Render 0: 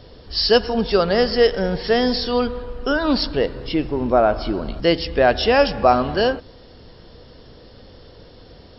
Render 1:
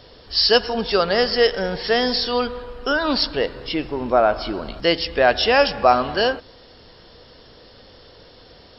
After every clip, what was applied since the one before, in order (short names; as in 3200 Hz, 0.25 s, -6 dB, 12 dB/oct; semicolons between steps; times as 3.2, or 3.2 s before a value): low shelf 470 Hz -10 dB; gain +3 dB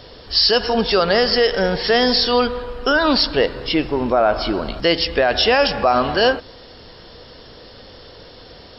limiter -11.5 dBFS, peak gain reduction 9 dB; gain +5.5 dB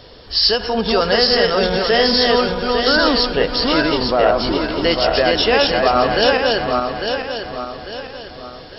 regenerating reverse delay 0.425 s, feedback 62%, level -2 dB; ending taper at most 270 dB/s; gain -1 dB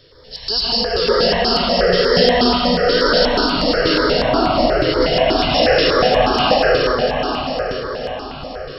reverb RT60 4.1 s, pre-delay 0.109 s, DRR -9 dB; step phaser 8.3 Hz 220–1800 Hz; gain -5.5 dB